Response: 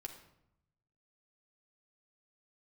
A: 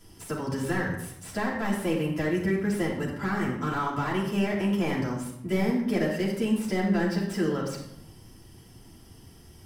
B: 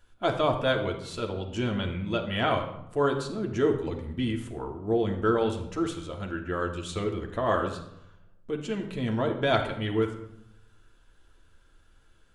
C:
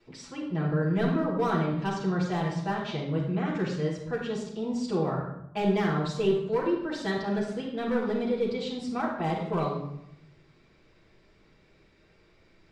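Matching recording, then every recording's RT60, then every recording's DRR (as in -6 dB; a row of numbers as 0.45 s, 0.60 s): B; 0.80 s, 0.80 s, 0.80 s; -7.0 dB, 2.0 dB, -15.0 dB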